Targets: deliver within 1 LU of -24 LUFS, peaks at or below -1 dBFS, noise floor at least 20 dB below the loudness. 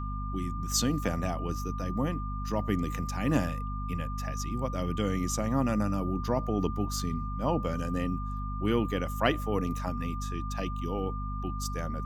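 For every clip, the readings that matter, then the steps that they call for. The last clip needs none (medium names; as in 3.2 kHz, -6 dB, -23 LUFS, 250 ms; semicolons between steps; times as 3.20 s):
hum 50 Hz; highest harmonic 250 Hz; hum level -32 dBFS; steady tone 1.2 kHz; tone level -39 dBFS; loudness -31.5 LUFS; peak level -9.5 dBFS; loudness target -24.0 LUFS
-> de-hum 50 Hz, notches 5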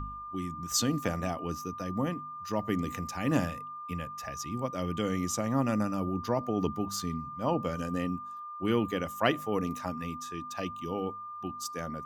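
hum not found; steady tone 1.2 kHz; tone level -39 dBFS
-> band-stop 1.2 kHz, Q 30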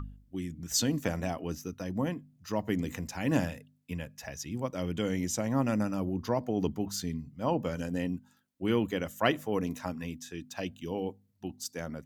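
steady tone not found; loudness -33.0 LUFS; peak level -10.5 dBFS; loudness target -24.0 LUFS
-> trim +9 dB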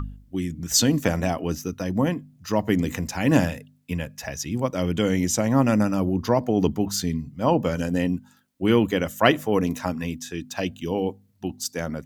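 loudness -24.0 LUFS; peak level -1.5 dBFS; noise floor -57 dBFS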